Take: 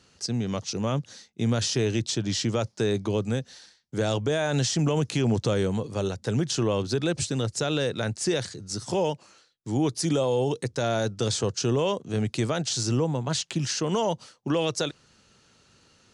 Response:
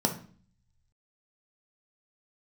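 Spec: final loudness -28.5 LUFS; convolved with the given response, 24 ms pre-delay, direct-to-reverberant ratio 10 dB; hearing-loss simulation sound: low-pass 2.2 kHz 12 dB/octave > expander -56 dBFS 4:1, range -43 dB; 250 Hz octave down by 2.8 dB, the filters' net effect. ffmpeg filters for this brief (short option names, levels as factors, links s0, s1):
-filter_complex "[0:a]equalizer=f=250:t=o:g=-4,asplit=2[s0][s1];[1:a]atrim=start_sample=2205,adelay=24[s2];[s1][s2]afir=irnorm=-1:irlink=0,volume=0.112[s3];[s0][s3]amix=inputs=2:normalize=0,lowpass=2200,agate=range=0.00708:threshold=0.00158:ratio=4,volume=0.891"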